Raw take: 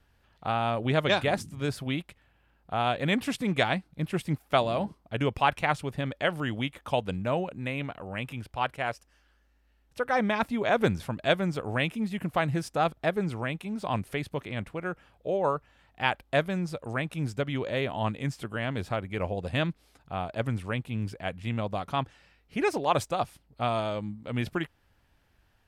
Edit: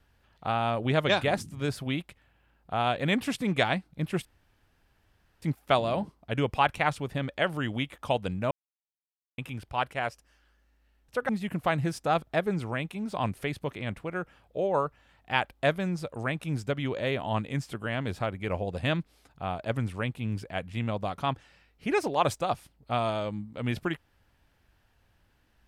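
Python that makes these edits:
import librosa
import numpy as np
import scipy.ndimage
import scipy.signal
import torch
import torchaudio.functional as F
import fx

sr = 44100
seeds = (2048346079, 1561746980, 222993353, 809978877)

y = fx.edit(x, sr, fx.insert_room_tone(at_s=4.25, length_s=1.17),
    fx.silence(start_s=7.34, length_s=0.87),
    fx.cut(start_s=10.12, length_s=1.87), tone=tone)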